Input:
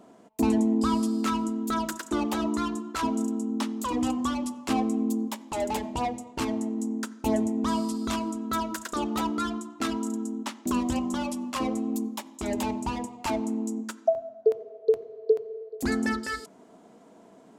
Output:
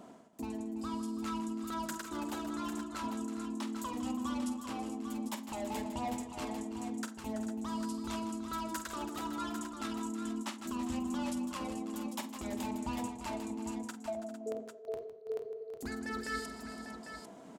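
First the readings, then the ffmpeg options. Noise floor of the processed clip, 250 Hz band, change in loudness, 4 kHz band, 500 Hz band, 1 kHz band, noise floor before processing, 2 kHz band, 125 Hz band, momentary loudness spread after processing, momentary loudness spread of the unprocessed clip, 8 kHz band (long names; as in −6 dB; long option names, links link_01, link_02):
−51 dBFS, −10.0 dB, −10.0 dB, −8.0 dB, −12.5 dB, −9.0 dB, −54 dBFS, −8.0 dB, −10.0 dB, 6 LU, 6 LU, −7.0 dB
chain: -af "areverse,acompressor=threshold=-38dB:ratio=6,areverse,equalizer=frequency=410:width_type=o:width=0.78:gain=-4,aecho=1:1:48|157|330|400|453|798:0.266|0.251|0.211|0.168|0.237|0.376,volume=1.5dB"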